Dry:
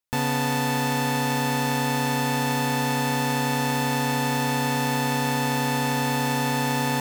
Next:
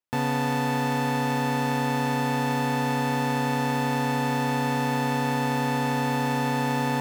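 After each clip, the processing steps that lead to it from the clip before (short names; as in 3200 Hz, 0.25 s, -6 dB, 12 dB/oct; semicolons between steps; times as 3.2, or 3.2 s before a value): HPF 100 Hz; high shelf 3100 Hz -9.5 dB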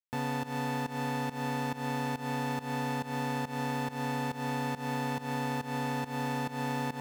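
pump 139 bpm, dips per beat 1, -18 dB, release 0.185 s; gain -7.5 dB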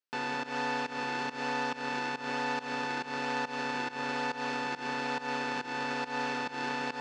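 in parallel at -6.5 dB: decimation with a swept rate 41×, swing 160% 1.1 Hz; on the sum: speaker cabinet 360–6600 Hz, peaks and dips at 660 Hz -3 dB, 1500 Hz +7 dB, 2600 Hz +5 dB, 4600 Hz +5 dB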